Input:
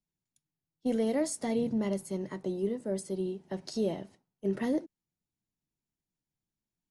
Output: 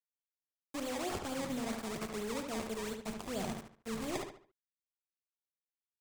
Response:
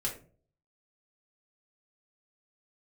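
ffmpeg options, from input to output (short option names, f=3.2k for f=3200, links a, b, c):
-filter_complex "[0:a]asubboost=boost=8.5:cutoff=91,areverse,acompressor=threshold=-44dB:ratio=12,areverse,acrusher=samples=25:mix=1:aa=0.000001:lfo=1:lforange=25:lforate=3.8,lowpass=f=7.3k:t=q:w=1.8,asetrate=50715,aresample=44100,acrusher=bits=8:mix=0:aa=0.000001,asplit=2[a][b];[b]adelay=72,lowpass=f=4.4k:p=1,volume=-5dB,asplit=2[c][d];[d]adelay=72,lowpass=f=4.4k:p=1,volume=0.35,asplit=2[e][f];[f]adelay=72,lowpass=f=4.4k:p=1,volume=0.35,asplit=2[g][h];[h]adelay=72,lowpass=f=4.4k:p=1,volume=0.35[i];[a][c][e][g][i]amix=inputs=5:normalize=0,volume=7.5dB"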